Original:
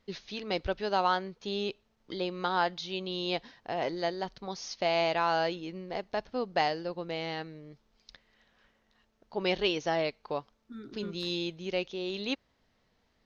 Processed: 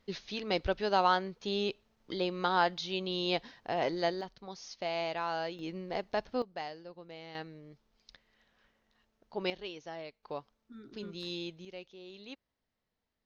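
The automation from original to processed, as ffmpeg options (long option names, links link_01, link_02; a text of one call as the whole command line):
ffmpeg -i in.wav -af "asetnsamples=nb_out_samples=441:pad=0,asendcmd='4.21 volume volume -7dB;5.59 volume volume 0dB;6.42 volume volume -12.5dB;7.35 volume volume -3.5dB;9.5 volume volume -14dB;10.23 volume volume -6dB;11.65 volume volume -14.5dB',volume=0.5dB" out.wav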